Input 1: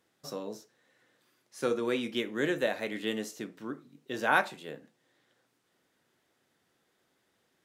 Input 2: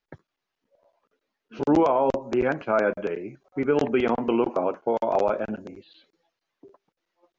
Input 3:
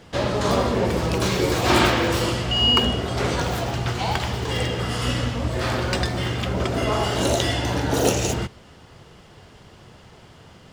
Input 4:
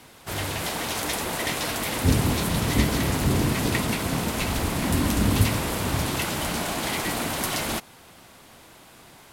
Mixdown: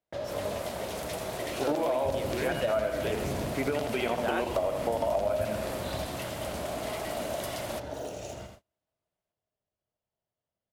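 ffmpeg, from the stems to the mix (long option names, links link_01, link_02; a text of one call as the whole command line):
ffmpeg -i stem1.wav -i stem2.wav -i stem3.wav -i stem4.wav -filter_complex "[0:a]volume=-5dB[link_01];[1:a]equalizer=frequency=4300:width=0.48:gain=14.5,alimiter=limit=-11.5dB:level=0:latency=1:release=457,volume=-6dB,asplit=2[link_02][link_03];[link_03]volume=-8dB[link_04];[2:a]acompressor=threshold=-24dB:ratio=8,volume=-15dB,asplit=2[link_05][link_06];[link_06]volume=-7.5dB[link_07];[3:a]volume=-12.5dB[link_08];[link_04][link_07]amix=inputs=2:normalize=0,aecho=0:1:81|162|243|324|405|486|567:1|0.49|0.24|0.118|0.0576|0.0282|0.0138[link_09];[link_01][link_02][link_05][link_08][link_09]amix=inputs=5:normalize=0,agate=range=-33dB:threshold=-50dB:ratio=16:detection=peak,equalizer=frequency=620:width_type=o:width=0.43:gain=13,acompressor=threshold=-25dB:ratio=6" out.wav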